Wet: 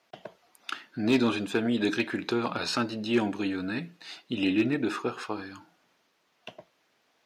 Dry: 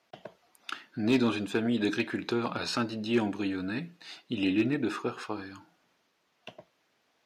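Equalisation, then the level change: low shelf 190 Hz -3.5 dB; +2.5 dB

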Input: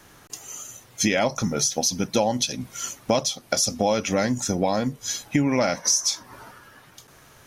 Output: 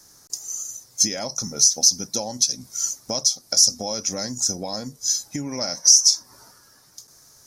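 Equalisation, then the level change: resonant high shelf 3900 Hz +10.5 dB, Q 3; -8.5 dB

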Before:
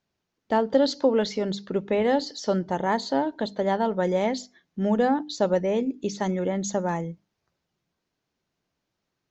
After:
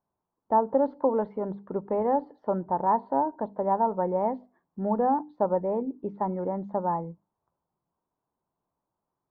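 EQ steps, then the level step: ladder low-pass 1100 Hz, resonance 60%; +5.0 dB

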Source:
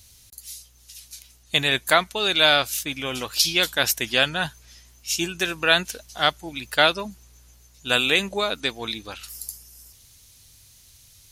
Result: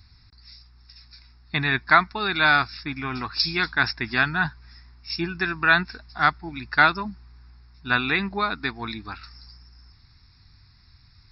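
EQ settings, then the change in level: brick-wall FIR low-pass 5500 Hz; fixed phaser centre 1300 Hz, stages 4; +5.0 dB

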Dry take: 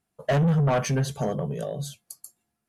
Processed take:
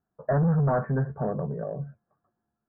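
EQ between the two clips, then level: steep low-pass 1700 Hz 72 dB/oct; -1.5 dB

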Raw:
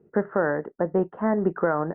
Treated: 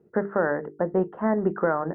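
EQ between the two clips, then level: notches 50/100/150/200/250/300/350/400/450 Hz; 0.0 dB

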